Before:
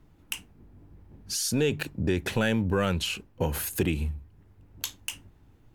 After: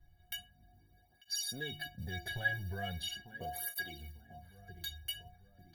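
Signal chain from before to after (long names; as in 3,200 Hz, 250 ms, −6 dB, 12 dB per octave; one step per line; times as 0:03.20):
low-shelf EQ 270 Hz +7.5 dB
notch filter 5,500 Hz, Q 11
on a send: feedback echo with a low-pass in the loop 894 ms, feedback 45%, low-pass 1,400 Hz, level −15 dB
on the sum: noise that follows the level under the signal 33 dB
phaser with its sweep stopped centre 1,700 Hz, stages 8
in parallel at −2 dB: downward compressor, threshold −37 dBFS, peak gain reduction 15.5 dB
on the sum: stiff-string resonator 340 Hz, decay 0.5 s, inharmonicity 0.03
through-zero flanger with one copy inverted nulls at 0.4 Hz, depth 4.6 ms
level +15 dB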